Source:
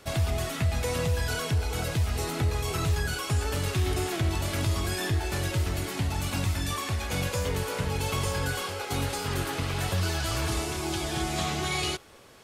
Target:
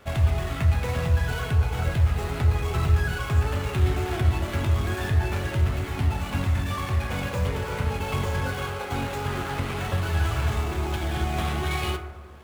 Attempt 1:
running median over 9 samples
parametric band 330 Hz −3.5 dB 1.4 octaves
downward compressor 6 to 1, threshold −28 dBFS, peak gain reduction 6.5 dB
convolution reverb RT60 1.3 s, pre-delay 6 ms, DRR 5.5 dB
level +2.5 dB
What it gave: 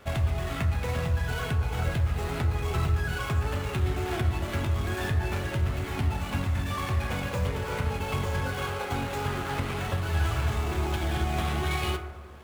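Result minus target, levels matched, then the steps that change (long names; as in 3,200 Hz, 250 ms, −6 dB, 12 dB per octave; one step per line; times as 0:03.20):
downward compressor: peak gain reduction +6.5 dB
remove: downward compressor 6 to 1, threshold −28 dBFS, peak gain reduction 6.5 dB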